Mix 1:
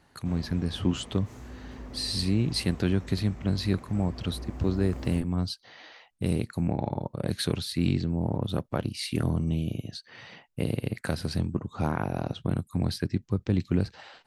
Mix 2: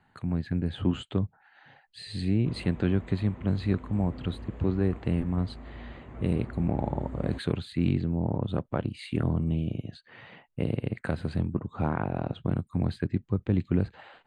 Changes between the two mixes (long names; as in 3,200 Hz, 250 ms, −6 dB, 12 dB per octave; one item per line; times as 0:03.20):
background: entry +2.20 s
master: add moving average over 8 samples